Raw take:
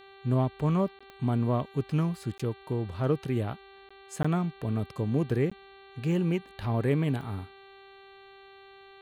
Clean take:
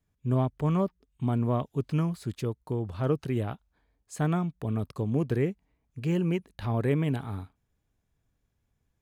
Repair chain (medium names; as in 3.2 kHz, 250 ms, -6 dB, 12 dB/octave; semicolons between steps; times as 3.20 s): de-click; de-hum 391.4 Hz, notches 11; interpolate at 0.99/2.38/3.89/4.23/5.50 s, 15 ms